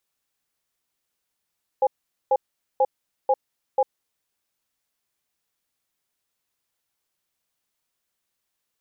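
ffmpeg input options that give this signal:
-f lavfi -i "aevalsrc='0.126*(sin(2*PI*524*t)+sin(2*PI*822*t))*clip(min(mod(t,0.49),0.05-mod(t,0.49))/0.005,0,1)':d=2.33:s=44100"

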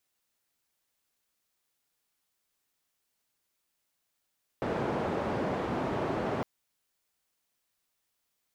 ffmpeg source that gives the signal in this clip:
-f lavfi -i "anoisesrc=c=white:d=1.81:r=44100:seed=1,highpass=f=99,lowpass=f=670,volume=-11.3dB"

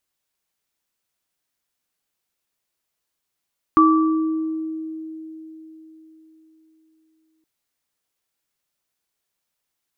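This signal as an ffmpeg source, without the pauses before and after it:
-f lavfi -i "aevalsrc='0.251*pow(10,-3*t/4.17)*sin(2*PI*318*t)+0.316*pow(10,-3*t/1.06)*sin(2*PI*1160*t)':d=3.67:s=44100"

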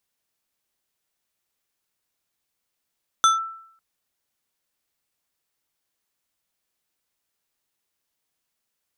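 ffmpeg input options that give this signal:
-f lavfi -i "aevalsrc='0.299*pow(10,-3*t/0.66)*sin(2*PI*1330*t+0.76*clip(1-t/0.15,0,1)*sin(2*PI*3.62*1330*t))':d=0.55:s=44100"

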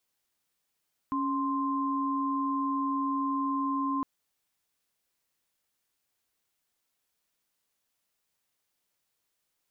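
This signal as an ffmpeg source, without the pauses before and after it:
-f lavfi -i "aevalsrc='0.0335*(sin(2*PI*277.18*t)+sin(2*PI*1046.5*t))':d=2.91:s=44100"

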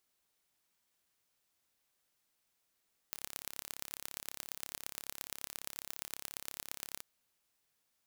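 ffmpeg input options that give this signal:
-f lavfi -i "aevalsrc='0.266*eq(mod(n,1275),0)*(0.5+0.5*eq(mod(n,5100),0))':d=3.88:s=44100"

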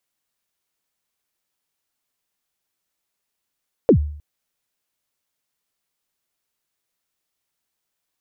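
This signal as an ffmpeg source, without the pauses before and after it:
-f lavfi -i "aevalsrc='0.501*pow(10,-3*t/0.58)*sin(2*PI*(550*0.089/log(74/550)*(exp(log(74/550)*min(t,0.089)/0.089)-1)+74*max(t-0.089,0)))':d=0.31:s=44100"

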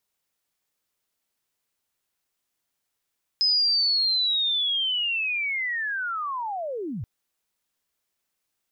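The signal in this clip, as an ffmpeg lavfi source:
-f lavfi -i "aevalsrc='pow(10,(-18-11*t/3.63)/20)*sin(2*PI*(5100*t-5011*t*t/(2*3.63)))':d=3.63:s=44100"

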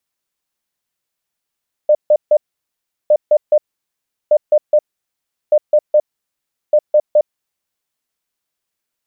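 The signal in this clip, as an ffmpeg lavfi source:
-f lavfi -i "aevalsrc='0.473*sin(2*PI*602*t)*clip(min(mod(mod(t,1.21),0.21),0.06-mod(mod(t,1.21),0.21))/0.005,0,1)*lt(mod(t,1.21),0.63)':d=6.05:s=44100"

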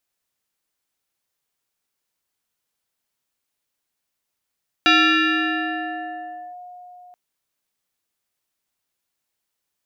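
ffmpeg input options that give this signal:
-f lavfi -i "aevalsrc='0.299*pow(10,-3*t/4.15)*sin(2*PI*719*t+3*clip(1-t/1.69,0,1)*sin(2*PI*1.44*719*t))':d=2.28:s=44100"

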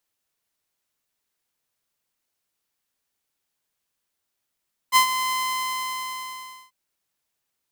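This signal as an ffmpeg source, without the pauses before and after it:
-f lavfi -i "aevalsrc='0.355*(2*mod(1030*t,1)-1)':d=1.79:s=44100,afade=t=in:d=0.042,afade=t=out:st=0.042:d=0.097:silence=0.282,afade=t=out:st=0.39:d=1.4"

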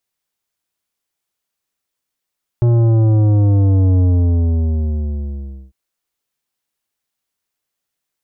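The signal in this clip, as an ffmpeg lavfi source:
-f lavfi -i "aevalsrc='0.299*clip((3.1-t)/1.73,0,1)*tanh(3.55*sin(2*PI*120*3.1/log(65/120)*(exp(log(65/120)*t/3.1)-1)))/tanh(3.55)':d=3.1:s=44100"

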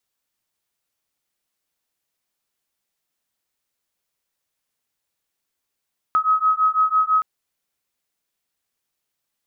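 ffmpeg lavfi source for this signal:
-f lavfi -i "aevalsrc='0.119*(sin(2*PI*1270*t)+sin(2*PI*1276*t))':d=1.07:s=44100"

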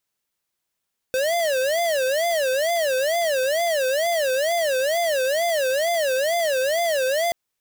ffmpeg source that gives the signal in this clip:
-f lavfi -i "aevalsrc='0.0841*(2*lt(mod((602*t-89/(2*PI*2.2)*sin(2*PI*2.2*t)),1),0.5)-1)':d=6.18:s=44100"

